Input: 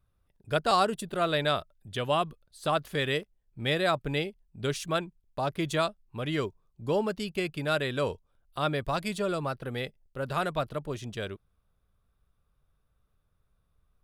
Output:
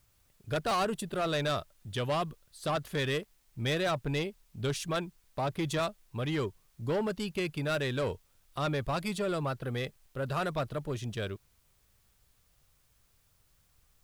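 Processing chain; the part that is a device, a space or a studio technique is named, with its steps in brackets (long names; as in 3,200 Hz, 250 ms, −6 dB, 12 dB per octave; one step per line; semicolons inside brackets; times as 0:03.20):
open-reel tape (soft clipping −25 dBFS, distortion −11 dB; parametric band 110 Hz +4 dB 0.87 octaves; white noise bed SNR 37 dB)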